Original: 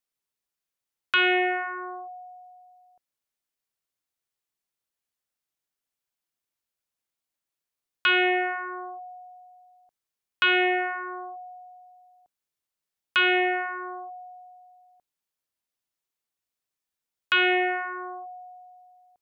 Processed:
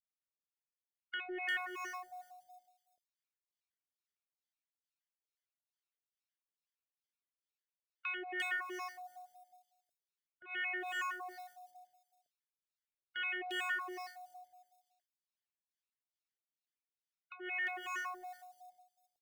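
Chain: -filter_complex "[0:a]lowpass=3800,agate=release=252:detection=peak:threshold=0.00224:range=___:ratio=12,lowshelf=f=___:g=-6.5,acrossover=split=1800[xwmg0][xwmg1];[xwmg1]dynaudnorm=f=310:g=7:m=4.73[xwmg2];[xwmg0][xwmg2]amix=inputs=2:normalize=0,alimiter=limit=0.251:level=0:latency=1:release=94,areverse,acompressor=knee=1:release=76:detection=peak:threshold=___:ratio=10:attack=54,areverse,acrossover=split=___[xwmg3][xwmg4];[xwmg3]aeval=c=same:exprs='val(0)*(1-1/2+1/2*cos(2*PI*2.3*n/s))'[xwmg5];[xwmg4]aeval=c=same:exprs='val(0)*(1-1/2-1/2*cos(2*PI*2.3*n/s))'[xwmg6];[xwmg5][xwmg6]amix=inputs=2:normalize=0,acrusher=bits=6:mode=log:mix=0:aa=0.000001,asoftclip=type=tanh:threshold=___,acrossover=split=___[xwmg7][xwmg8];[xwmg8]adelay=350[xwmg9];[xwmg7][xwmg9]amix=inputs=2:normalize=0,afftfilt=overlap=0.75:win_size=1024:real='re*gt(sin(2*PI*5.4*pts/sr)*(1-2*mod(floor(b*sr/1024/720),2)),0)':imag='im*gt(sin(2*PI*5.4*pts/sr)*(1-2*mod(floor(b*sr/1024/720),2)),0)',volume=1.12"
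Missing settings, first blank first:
0.282, 400, 0.0282, 820, 0.0668, 2900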